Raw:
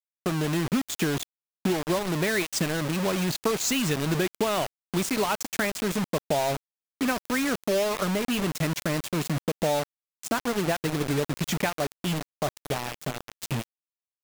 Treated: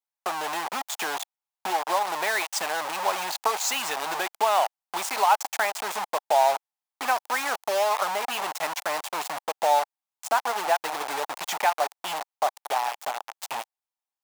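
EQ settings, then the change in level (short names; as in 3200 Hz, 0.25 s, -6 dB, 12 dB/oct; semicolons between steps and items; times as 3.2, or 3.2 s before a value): resonant high-pass 820 Hz, resonance Q 4.1; 0.0 dB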